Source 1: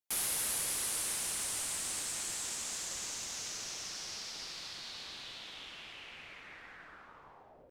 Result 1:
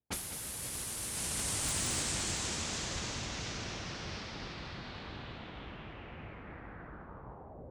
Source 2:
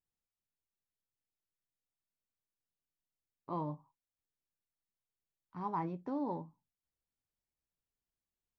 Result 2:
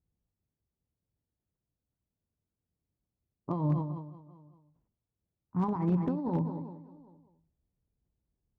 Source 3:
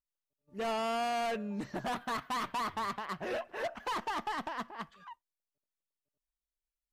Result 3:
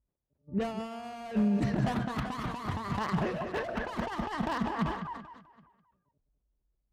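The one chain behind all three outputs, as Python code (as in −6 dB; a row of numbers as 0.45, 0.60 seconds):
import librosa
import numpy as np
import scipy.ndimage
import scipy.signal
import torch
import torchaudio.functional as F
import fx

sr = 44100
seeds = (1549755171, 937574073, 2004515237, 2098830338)

y = fx.env_lowpass(x, sr, base_hz=710.0, full_db=-32.0)
y = fx.echo_feedback(y, sr, ms=389, feedback_pct=28, wet_db=-21.0)
y = fx.over_compress(y, sr, threshold_db=-39.0, ratio=-0.5)
y = fx.low_shelf(y, sr, hz=160.0, db=7.5)
y = y + 10.0 ** (-10.0 / 20.0) * np.pad(y, (int(202 * sr / 1000.0), 0))[:len(y)]
y = 10.0 ** (-29.5 / 20.0) * (np.abs((y / 10.0 ** (-29.5 / 20.0) + 3.0) % 4.0 - 2.0) - 1.0)
y = scipy.signal.sosfilt(scipy.signal.butter(2, 46.0, 'highpass', fs=sr, output='sos'), y)
y = fx.low_shelf(y, sr, hz=340.0, db=9.5)
y = fx.sustainer(y, sr, db_per_s=82.0)
y = y * librosa.db_to_amplitude(2.5)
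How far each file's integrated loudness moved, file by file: −0.5, +8.0, +3.0 LU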